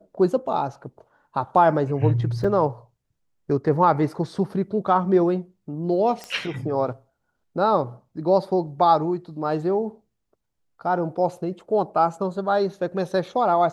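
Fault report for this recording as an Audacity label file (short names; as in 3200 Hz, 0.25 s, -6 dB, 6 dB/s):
2.440000	2.450000	gap 5.2 ms
6.240000	6.240000	pop -19 dBFS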